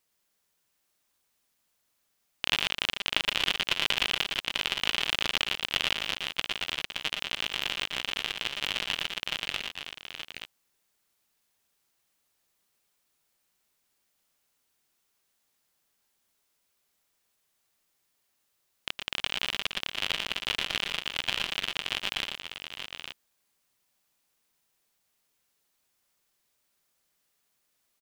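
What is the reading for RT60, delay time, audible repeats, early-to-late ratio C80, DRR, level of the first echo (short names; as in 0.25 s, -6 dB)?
none, 0.114 s, 3, none, none, -7.5 dB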